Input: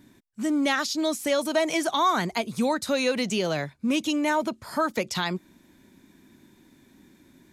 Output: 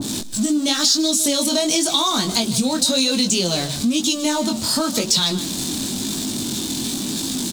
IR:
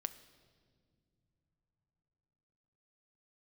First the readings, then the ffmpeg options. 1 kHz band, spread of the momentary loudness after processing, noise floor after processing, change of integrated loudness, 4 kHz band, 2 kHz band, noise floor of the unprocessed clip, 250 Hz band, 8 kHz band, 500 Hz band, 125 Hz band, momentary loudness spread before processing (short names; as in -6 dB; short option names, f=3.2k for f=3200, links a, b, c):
-0.5 dB, 7 LU, -27 dBFS, +7.0 dB, +14.0 dB, -1.0 dB, -59 dBFS, +7.0 dB, +17.5 dB, +1.5 dB, +8.5 dB, 6 LU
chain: -filter_complex "[0:a]aeval=exprs='val(0)+0.5*0.0266*sgn(val(0))':c=same,flanger=delay=18.5:depth=5.2:speed=0.97,aecho=1:1:154:0.168,asplit=2[a][b];[b]acrusher=bits=6:mix=0:aa=0.000001,volume=-9.5dB[c];[a][c]amix=inputs=2:normalize=0,acompressor=mode=upward:threshold=-32dB:ratio=2.5,equalizer=f=125:t=o:w=1:g=4,equalizer=f=250:t=o:w=1:g=8,equalizer=f=2k:t=o:w=1:g=-9,equalizer=f=4k:t=o:w=1:g=11,equalizer=f=8k:t=o:w=1:g=11,acompressor=threshold=-20dB:ratio=4,adynamicequalizer=threshold=0.0126:dfrequency=1700:dqfactor=0.7:tfrequency=1700:tqfactor=0.7:attack=5:release=100:ratio=0.375:range=2:mode=boostabove:tftype=highshelf,volume=2.5dB"